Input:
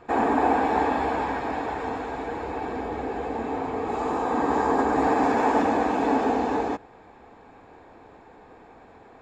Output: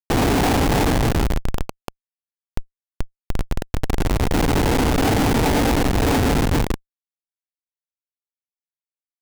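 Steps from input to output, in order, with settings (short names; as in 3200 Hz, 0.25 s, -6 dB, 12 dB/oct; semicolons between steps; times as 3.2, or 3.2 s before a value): spectral gain 4.02–6.04, 1000–6300 Hz -16 dB; Schmitt trigger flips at -20.5 dBFS; gain +9 dB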